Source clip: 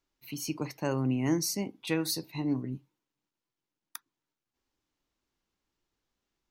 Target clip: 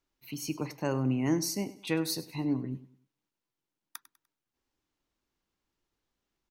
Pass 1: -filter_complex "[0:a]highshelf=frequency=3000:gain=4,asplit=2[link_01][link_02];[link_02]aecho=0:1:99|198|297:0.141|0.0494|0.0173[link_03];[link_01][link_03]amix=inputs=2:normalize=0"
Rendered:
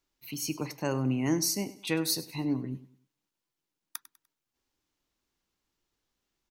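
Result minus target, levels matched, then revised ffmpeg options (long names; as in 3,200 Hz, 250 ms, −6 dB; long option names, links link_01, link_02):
8,000 Hz band +4.0 dB
-filter_complex "[0:a]highshelf=frequency=3000:gain=-2,asplit=2[link_01][link_02];[link_02]aecho=0:1:99|198|297:0.141|0.0494|0.0173[link_03];[link_01][link_03]amix=inputs=2:normalize=0"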